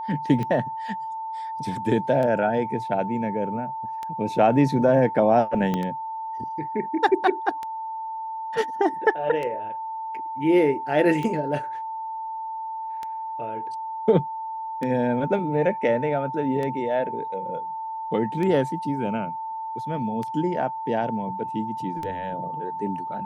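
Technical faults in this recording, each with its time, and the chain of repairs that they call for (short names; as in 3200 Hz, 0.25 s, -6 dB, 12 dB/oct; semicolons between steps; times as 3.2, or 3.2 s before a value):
tick 33 1/3 rpm -18 dBFS
tone 890 Hz -29 dBFS
5.74 pop -13 dBFS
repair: de-click; notch 890 Hz, Q 30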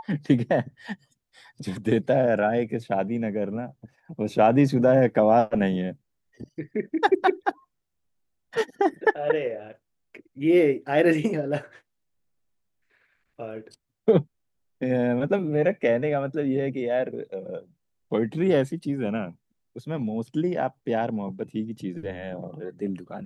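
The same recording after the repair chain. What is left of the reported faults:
5.74 pop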